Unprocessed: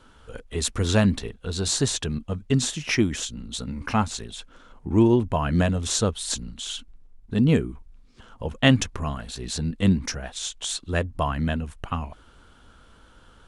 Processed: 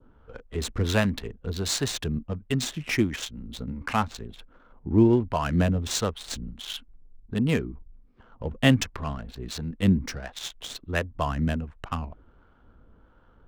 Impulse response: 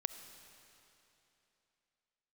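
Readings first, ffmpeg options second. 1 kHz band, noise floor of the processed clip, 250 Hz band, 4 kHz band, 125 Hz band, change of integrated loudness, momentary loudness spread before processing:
-1.5 dB, -58 dBFS, -2.0 dB, -3.5 dB, -2.5 dB, -2.5 dB, 14 LU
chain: -filter_complex "[0:a]adynamicequalizer=threshold=0.00794:dfrequency=2100:dqfactor=2:tfrequency=2100:tqfactor=2:attack=5:release=100:ratio=0.375:range=1.5:mode=boostabove:tftype=bell,acrossover=split=540[a][b];[b]adynamicsmooth=sensitivity=6:basefreq=1.1k[c];[a][c]amix=inputs=2:normalize=0,acrossover=split=580[d][e];[d]aeval=exprs='val(0)*(1-0.5/2+0.5/2*cos(2*PI*1.4*n/s))':c=same[f];[e]aeval=exprs='val(0)*(1-0.5/2-0.5/2*cos(2*PI*1.4*n/s))':c=same[g];[f][g]amix=inputs=2:normalize=0"

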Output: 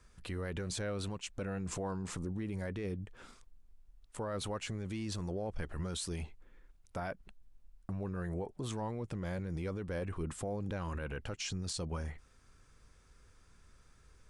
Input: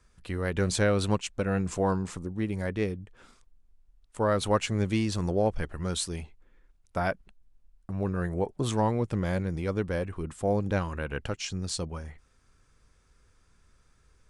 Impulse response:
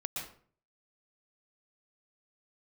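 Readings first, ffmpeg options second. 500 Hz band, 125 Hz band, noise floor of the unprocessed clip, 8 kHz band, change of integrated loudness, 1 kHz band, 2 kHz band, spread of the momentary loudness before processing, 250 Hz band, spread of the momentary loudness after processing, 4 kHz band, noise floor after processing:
-11.5 dB, -8.5 dB, -65 dBFS, -6.5 dB, -10.0 dB, -12.0 dB, -10.0 dB, 10 LU, -9.5 dB, 6 LU, -7.5 dB, -64 dBFS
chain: -af "acompressor=threshold=-31dB:ratio=6,alimiter=level_in=7dB:limit=-24dB:level=0:latency=1:release=14,volume=-7dB,volume=1dB"

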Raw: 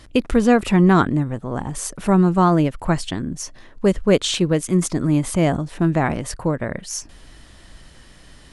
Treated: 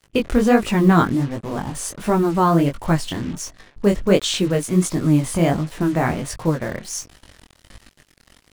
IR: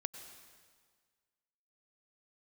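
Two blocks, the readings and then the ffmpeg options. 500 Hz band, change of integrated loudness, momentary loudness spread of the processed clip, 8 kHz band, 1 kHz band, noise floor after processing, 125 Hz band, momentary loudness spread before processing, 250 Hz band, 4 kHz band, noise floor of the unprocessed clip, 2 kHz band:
0.0 dB, -0.5 dB, 12 LU, 0.0 dB, 0.0 dB, -59 dBFS, -0.5 dB, 13 LU, -0.5 dB, 0.0 dB, -47 dBFS, 0.0 dB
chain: -af "acrusher=bits=5:mix=0:aa=0.5,flanger=delay=18:depth=6.7:speed=1.4,volume=3dB"

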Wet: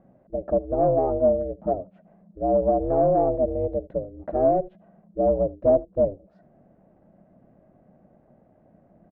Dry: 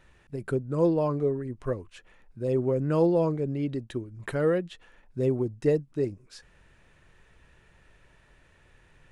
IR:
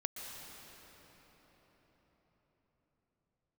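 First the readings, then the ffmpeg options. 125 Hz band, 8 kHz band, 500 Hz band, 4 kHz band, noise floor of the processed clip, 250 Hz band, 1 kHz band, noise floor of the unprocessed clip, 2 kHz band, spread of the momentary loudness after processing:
-4.0 dB, n/a, +6.0 dB, under -25 dB, -60 dBFS, -0.5 dB, +11.5 dB, -61 dBFS, under -10 dB, 10 LU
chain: -filter_complex "[0:a]volume=20.5dB,asoftclip=hard,volume=-20.5dB,aeval=exprs='val(0)*sin(2*PI*190*n/s)':c=same,asoftclip=type=tanh:threshold=-22dB,lowpass=f=630:t=q:w=4.9,asplit=2[a][b];[b]aecho=0:1:77:0.0708[c];[a][c]amix=inputs=2:normalize=0,volume=2.5dB"

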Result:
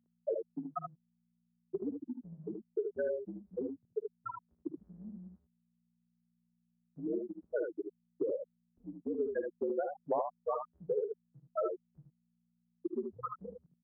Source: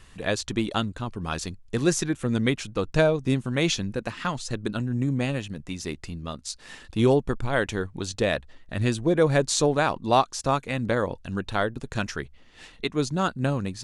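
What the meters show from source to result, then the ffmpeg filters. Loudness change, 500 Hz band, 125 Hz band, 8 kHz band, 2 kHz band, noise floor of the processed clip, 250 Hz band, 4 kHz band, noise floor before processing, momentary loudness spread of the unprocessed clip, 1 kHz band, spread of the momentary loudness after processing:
-13.0 dB, -10.5 dB, -28.5 dB, under -40 dB, -25.5 dB, -79 dBFS, -15.5 dB, under -40 dB, -51 dBFS, 12 LU, -15.0 dB, 13 LU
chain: -filter_complex "[0:a]afftfilt=real='re*gte(hypot(re,im),0.398)':imag='im*gte(hypot(re,im),0.398)':win_size=1024:overlap=0.75,acompressor=threshold=-30dB:ratio=16,aeval=exprs='val(0)+0.002*(sin(2*PI*60*n/s)+sin(2*PI*2*60*n/s)/2+sin(2*PI*3*60*n/s)/3+sin(2*PI*4*60*n/s)/4+sin(2*PI*5*60*n/s)/5)':c=same,highpass=f=380:t=q:w=0.5412,highpass=f=380:t=q:w=1.307,lowpass=f=2k:t=q:w=0.5176,lowpass=f=2k:t=q:w=0.7071,lowpass=f=2k:t=q:w=1.932,afreqshift=-68,asplit=2[a][b];[b]aecho=0:1:54|76:0.158|0.531[c];[a][c]amix=inputs=2:normalize=0,volume=1dB"

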